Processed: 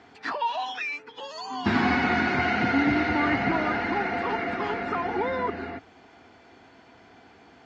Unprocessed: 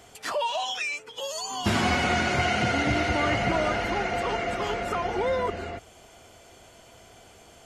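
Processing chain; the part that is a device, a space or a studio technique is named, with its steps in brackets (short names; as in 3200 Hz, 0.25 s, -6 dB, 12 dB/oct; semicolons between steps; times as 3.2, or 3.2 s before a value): guitar cabinet (speaker cabinet 98–4300 Hz, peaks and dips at 120 Hz -5 dB, 270 Hz +9 dB, 580 Hz -9 dB, 860 Hz +4 dB, 1700 Hz +5 dB, 3100 Hz -8 dB)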